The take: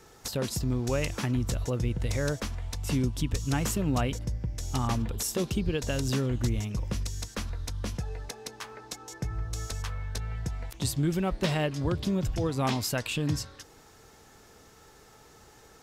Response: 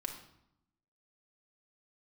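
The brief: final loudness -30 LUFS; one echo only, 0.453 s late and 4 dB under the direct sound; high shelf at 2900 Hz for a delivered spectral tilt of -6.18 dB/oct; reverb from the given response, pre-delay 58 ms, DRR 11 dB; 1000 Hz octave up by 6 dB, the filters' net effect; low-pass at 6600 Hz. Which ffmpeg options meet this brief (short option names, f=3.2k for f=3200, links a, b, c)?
-filter_complex "[0:a]lowpass=6.6k,equalizer=f=1k:t=o:g=8.5,highshelf=f=2.9k:g=-5.5,aecho=1:1:453:0.631,asplit=2[a][b];[1:a]atrim=start_sample=2205,adelay=58[c];[b][c]afir=irnorm=-1:irlink=0,volume=-10.5dB[d];[a][d]amix=inputs=2:normalize=0,volume=-1dB"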